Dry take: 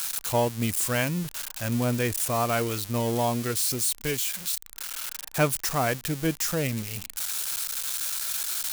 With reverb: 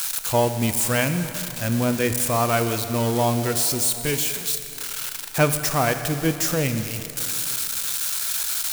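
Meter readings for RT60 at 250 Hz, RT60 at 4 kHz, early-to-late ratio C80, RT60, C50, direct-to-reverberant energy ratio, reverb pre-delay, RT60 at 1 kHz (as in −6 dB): 3.1 s, 2.8 s, 9.5 dB, 2.9 s, 9.0 dB, 8.0 dB, 7 ms, 3.0 s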